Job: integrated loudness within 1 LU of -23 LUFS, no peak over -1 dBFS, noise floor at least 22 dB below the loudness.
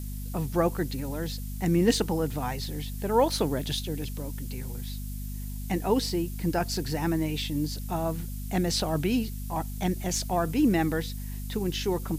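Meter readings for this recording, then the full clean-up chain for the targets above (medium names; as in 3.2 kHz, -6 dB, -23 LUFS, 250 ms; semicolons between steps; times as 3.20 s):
hum 50 Hz; highest harmonic 250 Hz; hum level -33 dBFS; noise floor -35 dBFS; noise floor target -51 dBFS; loudness -29.0 LUFS; peak level -9.5 dBFS; loudness target -23.0 LUFS
-> hum notches 50/100/150/200/250 Hz; noise reduction 16 dB, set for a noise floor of -35 dBFS; trim +6 dB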